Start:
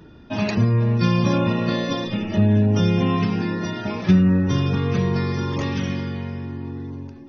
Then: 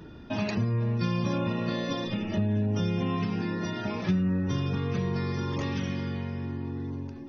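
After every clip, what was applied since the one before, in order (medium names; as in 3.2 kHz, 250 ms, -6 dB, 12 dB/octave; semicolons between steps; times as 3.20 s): compression 2:1, threshold -32 dBFS, peak gain reduction 11.5 dB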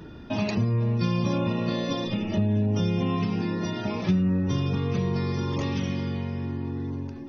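dynamic bell 1.6 kHz, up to -6 dB, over -54 dBFS, Q 2.4; trim +3 dB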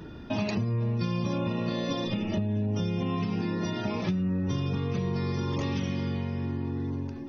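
compression, threshold -25 dBFS, peak gain reduction 7 dB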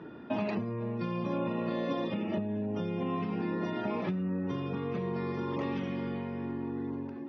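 band-pass 220–2100 Hz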